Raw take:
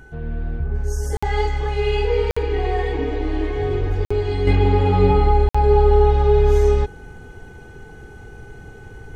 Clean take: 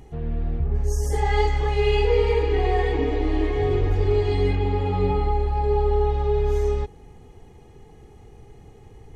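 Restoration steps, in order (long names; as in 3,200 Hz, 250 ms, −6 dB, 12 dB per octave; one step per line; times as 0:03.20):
notch filter 1,500 Hz, Q 30
repair the gap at 0:01.17/0:02.31/0:04.05/0:05.49, 55 ms
level 0 dB, from 0:04.47 −7 dB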